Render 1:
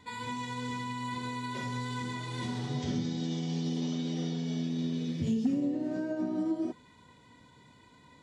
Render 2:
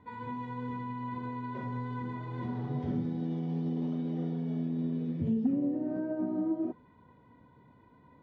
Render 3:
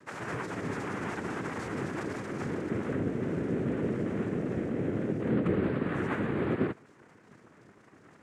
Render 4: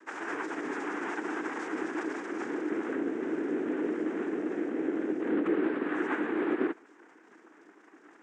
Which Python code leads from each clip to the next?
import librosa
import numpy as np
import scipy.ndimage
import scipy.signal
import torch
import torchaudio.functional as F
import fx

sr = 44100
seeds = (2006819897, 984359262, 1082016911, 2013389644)

y1 = scipy.signal.sosfilt(scipy.signal.butter(2, 1200.0, 'lowpass', fs=sr, output='sos'), x)
y2 = fx.fold_sine(y1, sr, drive_db=4, ceiling_db=-19.5)
y2 = fx.noise_vocoder(y2, sr, seeds[0], bands=3)
y2 = y2 * librosa.db_to_amplitude(-5.0)
y3 = fx.cabinet(y2, sr, low_hz=290.0, low_slope=24, high_hz=8100.0, hz=(310.0, 570.0, 850.0, 1600.0, 4300.0), db=(8, -6, 3, 4, -7))